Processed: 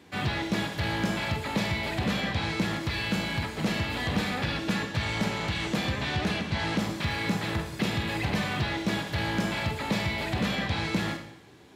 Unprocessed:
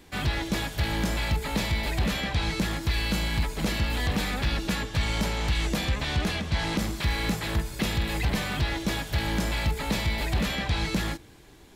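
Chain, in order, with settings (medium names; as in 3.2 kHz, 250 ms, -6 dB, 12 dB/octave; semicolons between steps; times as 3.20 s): high-pass 88 Hz 24 dB/octave; treble shelf 7 kHz -11.5 dB; Schroeder reverb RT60 0.71 s, combs from 31 ms, DRR 6 dB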